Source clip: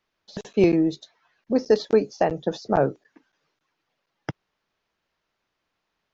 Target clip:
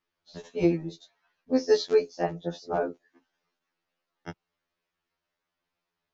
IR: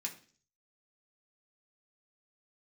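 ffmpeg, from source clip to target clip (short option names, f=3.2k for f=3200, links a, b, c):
-filter_complex "[0:a]asettb=1/sr,asplit=3[a][b][c];[a]atrim=end=1.544[d];[b]atrim=start=1.54:end=2.08,asetpts=PTS-STARTPTS,afade=t=in:d=0.004:c=qsin,afade=t=out:st=0.536:d=0.004:c=qsin,highshelf=f=2.1k:g=10.5[e];[c]atrim=start=2.076[f];[d][e]acrossfade=d=0.004:c1=hsin:c2=qsin[g];[g][f]acrossfade=d=0.004:c1=qsin:c2=hsin,afftfilt=real='re*2*eq(mod(b,4),0)':imag='im*2*eq(mod(b,4),0)':win_size=2048:overlap=0.75,volume=-4.5dB"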